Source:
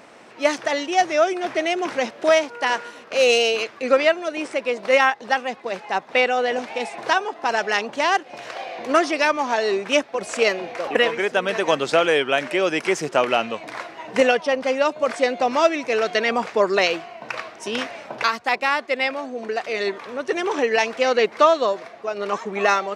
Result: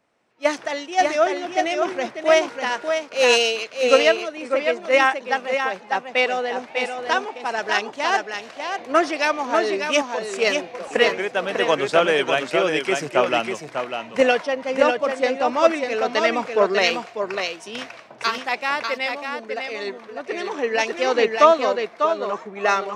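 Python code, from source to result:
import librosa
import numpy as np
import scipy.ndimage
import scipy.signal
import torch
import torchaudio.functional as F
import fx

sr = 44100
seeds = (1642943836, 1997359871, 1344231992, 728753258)

y = x + 10.0 ** (-4.0 / 20.0) * np.pad(x, (int(597 * sr / 1000.0), 0))[:len(x)]
y = fx.band_widen(y, sr, depth_pct=70)
y = F.gain(torch.from_numpy(y), -1.5).numpy()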